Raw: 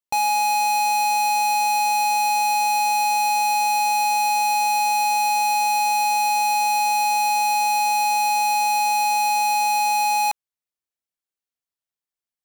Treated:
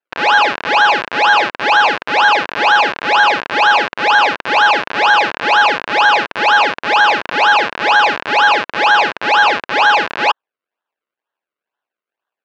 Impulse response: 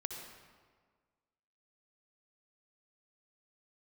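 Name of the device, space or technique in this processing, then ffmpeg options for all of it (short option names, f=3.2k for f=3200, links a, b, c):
circuit-bent sampling toy: -af "acrusher=samples=36:mix=1:aa=0.000001:lfo=1:lforange=36:lforate=2.1,highpass=600,equalizer=f=1k:t=q:w=4:g=4,equalizer=f=1.6k:t=q:w=4:g=9,equalizer=f=2.6k:t=q:w=4:g=7,lowpass=f=4.5k:w=0.5412,lowpass=f=4.5k:w=1.3066,volume=8dB"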